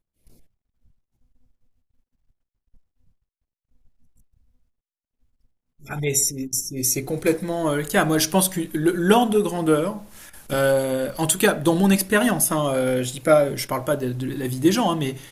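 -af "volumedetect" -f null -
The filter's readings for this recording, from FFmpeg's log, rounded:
mean_volume: -23.3 dB
max_volume: -2.3 dB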